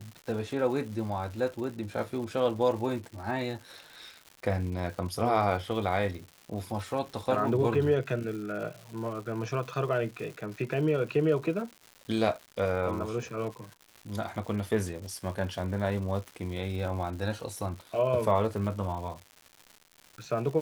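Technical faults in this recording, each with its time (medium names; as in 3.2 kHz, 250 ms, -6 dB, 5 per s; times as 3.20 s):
crackle 260 per s -39 dBFS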